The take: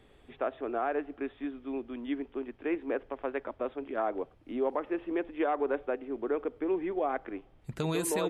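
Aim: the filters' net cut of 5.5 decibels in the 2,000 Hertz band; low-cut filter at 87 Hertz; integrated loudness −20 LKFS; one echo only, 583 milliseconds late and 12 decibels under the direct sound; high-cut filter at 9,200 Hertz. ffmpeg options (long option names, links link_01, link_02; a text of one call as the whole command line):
ffmpeg -i in.wav -af "highpass=87,lowpass=9200,equalizer=frequency=2000:width_type=o:gain=-7.5,aecho=1:1:583:0.251,volume=14.5dB" out.wav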